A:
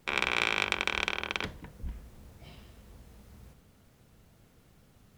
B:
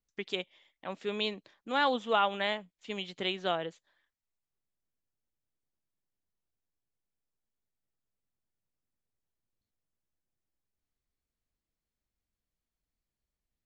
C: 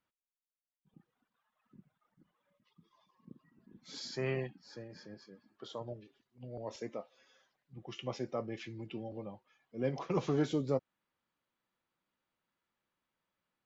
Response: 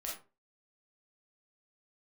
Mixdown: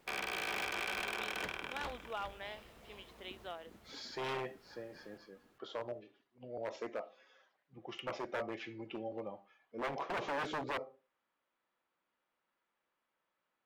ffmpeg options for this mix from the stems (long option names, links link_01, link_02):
-filter_complex "[0:a]asoftclip=type=tanh:threshold=-25dB,volume=0.5dB,asplit=2[link_01][link_02];[link_02]volume=-5.5dB[link_03];[1:a]volume=-14dB[link_04];[2:a]highshelf=frequency=5300:gain=-9.5,volume=2.5dB,asplit=2[link_05][link_06];[link_06]volume=-10dB[link_07];[3:a]atrim=start_sample=2205[link_08];[link_07][link_08]afir=irnorm=-1:irlink=0[link_09];[link_03]aecho=0:1:408|816|1224|1632:1|0.24|0.0576|0.0138[link_10];[link_01][link_04][link_05][link_09][link_10]amix=inputs=5:normalize=0,aeval=exprs='0.0316*(abs(mod(val(0)/0.0316+3,4)-2)-1)':channel_layout=same,bass=frequency=250:gain=-14,treble=frequency=4000:gain=-6"